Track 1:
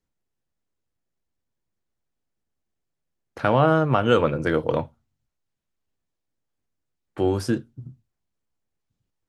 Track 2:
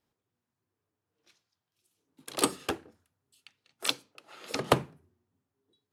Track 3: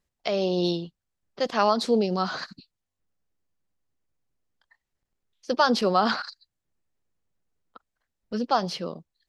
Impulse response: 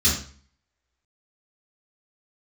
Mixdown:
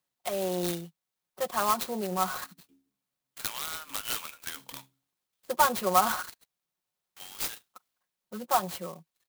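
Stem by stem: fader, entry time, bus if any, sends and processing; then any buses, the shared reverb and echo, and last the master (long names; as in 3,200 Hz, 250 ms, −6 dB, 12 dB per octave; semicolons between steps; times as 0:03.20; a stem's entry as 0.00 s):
−9.5 dB, 0.00 s, no send, Bessel high-pass filter 1,600 Hz, order 4; wave folding −24 dBFS; spectral tilt +4.5 dB per octave
−1.0 dB, 0.00 s, no send, formant resonators in series i; stiff-string resonator 64 Hz, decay 0.46 s, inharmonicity 0.008; automatic ducking −24 dB, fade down 1.45 s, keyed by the third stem
−1.0 dB, 0.00 s, no send, resonant band-pass 1,100 Hz, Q 1.3; comb filter 5.5 ms, depth 70%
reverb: not used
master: graphic EQ with 15 bands 160 Hz +10 dB, 1,600 Hz −4 dB, 4,000 Hz +12 dB; converter with an unsteady clock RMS 0.057 ms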